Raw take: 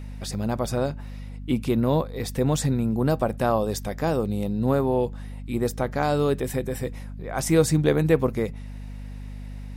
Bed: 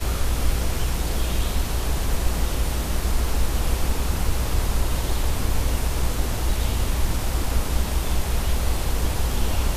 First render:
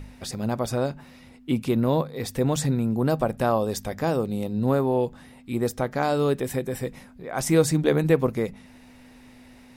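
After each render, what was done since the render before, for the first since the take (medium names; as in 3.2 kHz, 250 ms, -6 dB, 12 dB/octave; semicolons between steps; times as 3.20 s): de-hum 50 Hz, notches 4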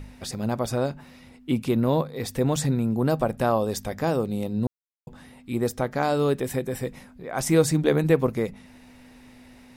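4.67–5.07 s: mute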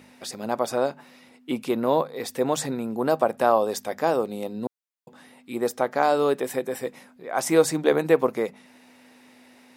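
high-pass 290 Hz 12 dB/octave; dynamic bell 850 Hz, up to +5 dB, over -36 dBFS, Q 0.76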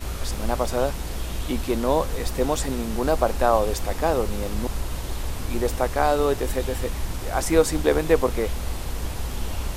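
add bed -6 dB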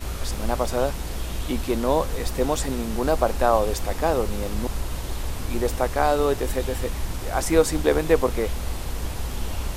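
no audible change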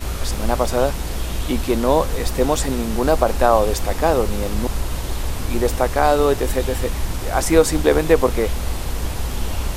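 trim +5 dB; peak limiter -2 dBFS, peak gain reduction 2.5 dB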